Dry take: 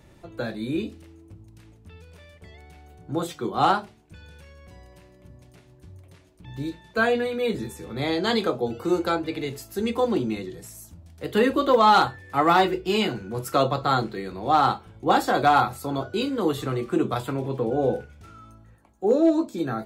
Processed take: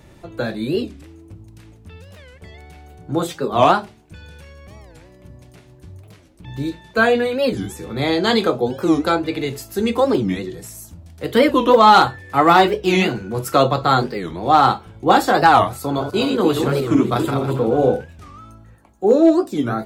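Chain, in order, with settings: 15.83–17.95 s: backward echo that repeats 142 ms, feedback 47%, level -6 dB; warped record 45 rpm, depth 250 cents; trim +6.5 dB

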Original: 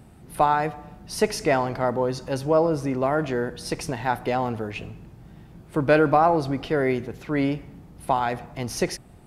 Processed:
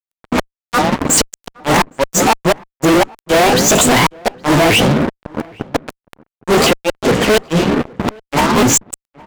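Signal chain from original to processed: sawtooth pitch modulation +9 st, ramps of 392 ms; gate -44 dBFS, range -26 dB; high-pass 180 Hz 12 dB/octave; peaking EQ 7.4 kHz +14.5 dB 0.4 oct; band-stop 5.2 kHz, Q 11; in parallel at 0 dB: compression 5:1, threshold -32 dBFS, peak gain reduction 16.5 dB; on the sum: level-controlled noise filter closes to 940 Hz, open at -17 dBFS; inverted gate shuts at -12 dBFS, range -42 dB; crackle 10 per s -50 dBFS; fuzz box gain 44 dB, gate -46 dBFS; echo from a far wall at 140 m, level -25 dB; trim +4.5 dB

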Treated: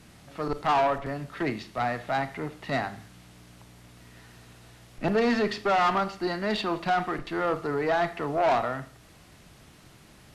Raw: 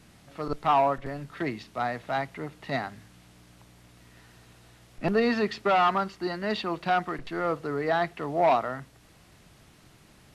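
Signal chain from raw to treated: Schroeder reverb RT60 0.47 s, combs from 26 ms, DRR 13 dB; valve stage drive 22 dB, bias 0.3; trim +3.5 dB

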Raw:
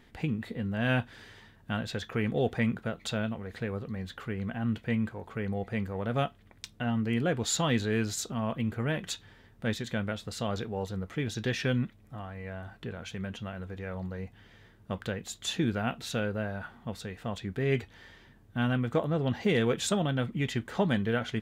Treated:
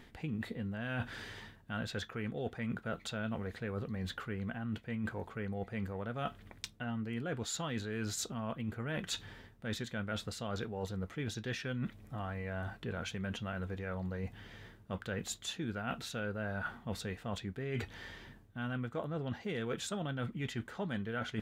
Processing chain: dynamic bell 1.4 kHz, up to +5 dB, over -51 dBFS, Q 3.7; reverse; compression 10:1, threshold -39 dBFS, peak gain reduction 17.5 dB; reverse; trim +4 dB

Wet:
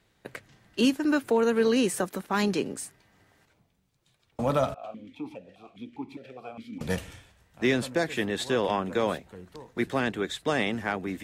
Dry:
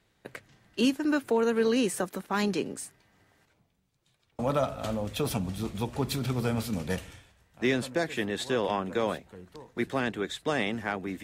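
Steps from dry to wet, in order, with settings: 4.74–6.81 s: stepped vowel filter 4.9 Hz; trim +2 dB

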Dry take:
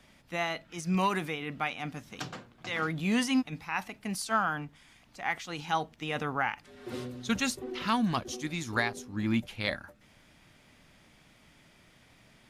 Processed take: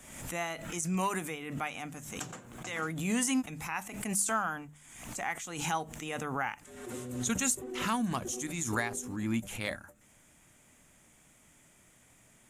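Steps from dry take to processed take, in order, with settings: resonant high shelf 5.9 kHz +8.5 dB, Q 3; hum notches 50/100/150/200 Hz; swell ahead of each attack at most 55 dB/s; trim -3.5 dB

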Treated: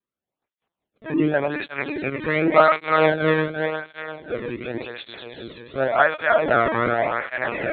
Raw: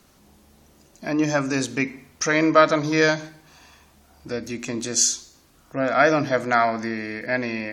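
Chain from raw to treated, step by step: backward echo that repeats 176 ms, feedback 73%, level -2.5 dB; gate -47 dBFS, range -32 dB; LPC vocoder at 8 kHz pitch kept; cancelling through-zero flanger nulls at 0.89 Hz, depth 1.5 ms; trim +2 dB

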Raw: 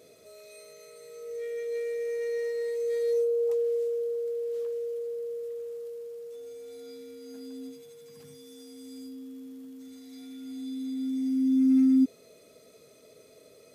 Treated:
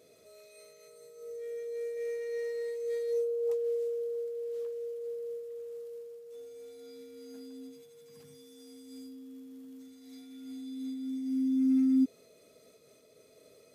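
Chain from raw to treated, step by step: 0.88–1.97 s: peaking EQ 2.3 kHz -7 dB 1.6 oct; random flutter of the level, depth 50%; trim -2.5 dB

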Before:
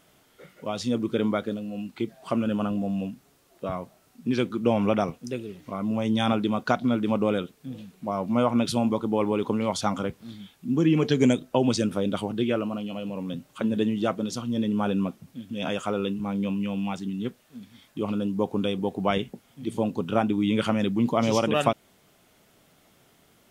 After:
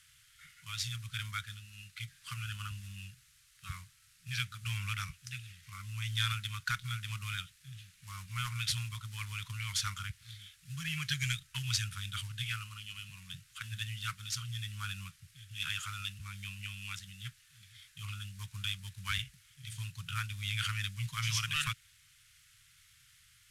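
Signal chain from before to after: CVSD coder 64 kbps; inverse Chebyshev band-stop 230–770 Hz, stop band 50 dB

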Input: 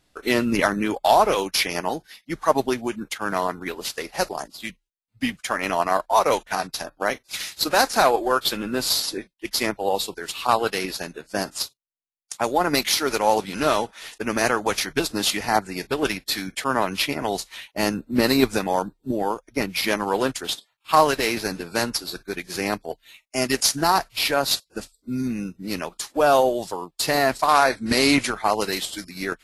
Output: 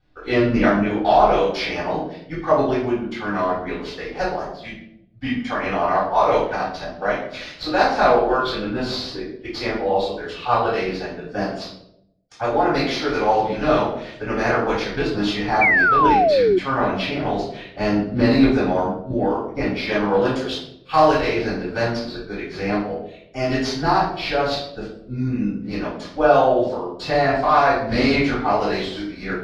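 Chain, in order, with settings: 28.51–28.99 s: jump at every zero crossing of -34.5 dBFS; distance through air 220 m; reverberation RT60 0.75 s, pre-delay 3 ms, DRR -9.5 dB; 15.61–16.59 s: painted sound fall 350–2400 Hz -4 dBFS; 20.25–21.21 s: treble shelf 5.5 kHz +10.5 dB; trim -11.5 dB

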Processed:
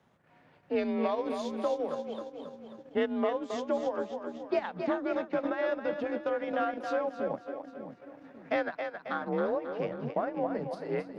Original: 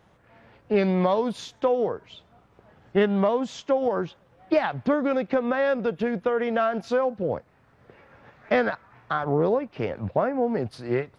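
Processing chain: two-band feedback delay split 310 Hz, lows 573 ms, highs 270 ms, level -6 dB; frequency shift +42 Hz; transient shaper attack 0 dB, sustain -7 dB; trim -8 dB

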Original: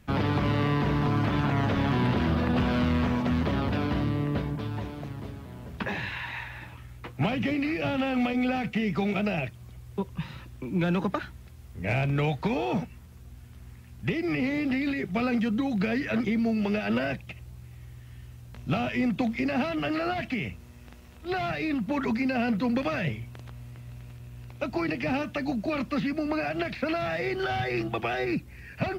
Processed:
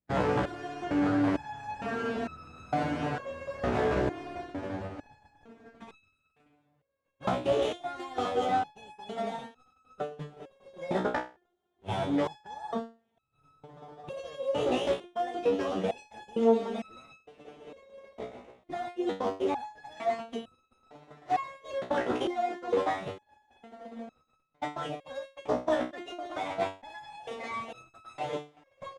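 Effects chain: median filter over 15 samples; high-pass 47 Hz 6 dB/octave; hum notches 60/120/180 Hz; delay 594 ms -21 dB; formant shift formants +6 st; dynamic bell 750 Hz, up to +6 dB, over -36 dBFS, Q 1.1; echo that smears into a reverb 1408 ms, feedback 48%, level -6.5 dB; compression 2:1, threshold -33 dBFS, peak gain reduction 8 dB; distance through air 57 m; gate -31 dBFS, range -37 dB; loudness maximiser +19.5 dB; resonator arpeggio 2.2 Hz 62–1300 Hz; trim -6.5 dB

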